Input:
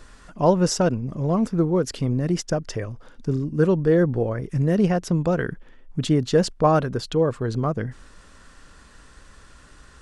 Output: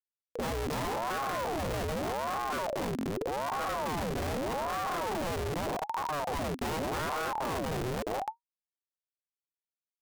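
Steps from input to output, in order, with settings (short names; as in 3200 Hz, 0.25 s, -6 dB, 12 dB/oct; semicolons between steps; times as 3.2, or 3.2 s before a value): Wiener smoothing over 41 samples; in parallel at -1.5 dB: compressor 6:1, threshold -33 dBFS, peak gain reduction 19.5 dB; on the sum: LPF 4400 Hz 24 dB/oct; on a send: echo 0.3 s -3.5 dB; on the sum: transient shaper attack -9 dB, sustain +3 dB; limiter -14 dBFS, peak gain reduction 7 dB; Schmitt trigger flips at -33 dBFS; ring modulator with a swept carrier 600 Hz, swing 60%, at 0.83 Hz; gain -6 dB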